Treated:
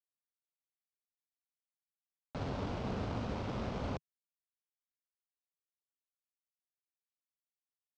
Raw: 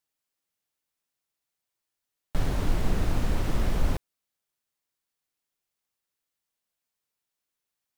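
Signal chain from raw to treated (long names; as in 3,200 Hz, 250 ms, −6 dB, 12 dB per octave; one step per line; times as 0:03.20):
slack as between gear wheels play −34 dBFS
loudspeaker in its box 120–5,800 Hz, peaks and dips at 160 Hz −7 dB, 330 Hz −7 dB, 1,800 Hz −6 dB
level −2.5 dB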